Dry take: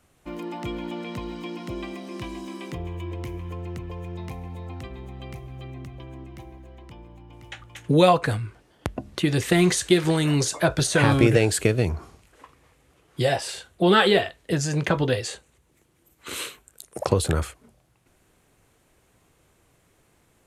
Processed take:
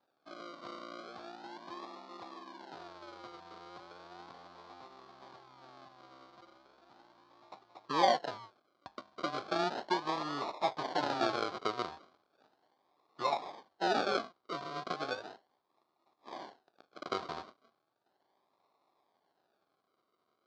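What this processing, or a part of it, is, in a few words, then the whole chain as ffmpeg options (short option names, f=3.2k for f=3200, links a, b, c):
circuit-bent sampling toy: -af "acrusher=samples=40:mix=1:aa=0.000001:lfo=1:lforange=24:lforate=0.36,highpass=470,equalizer=f=490:t=q:w=4:g=-6,equalizer=f=760:t=q:w=4:g=4,equalizer=f=1.1k:t=q:w=4:g=6,equalizer=f=1.9k:t=q:w=4:g=-7,equalizer=f=2.7k:t=q:w=4:g=-8,equalizer=f=4.4k:t=q:w=4:g=4,lowpass=f=4.7k:w=0.5412,lowpass=f=4.7k:w=1.3066,volume=-9dB"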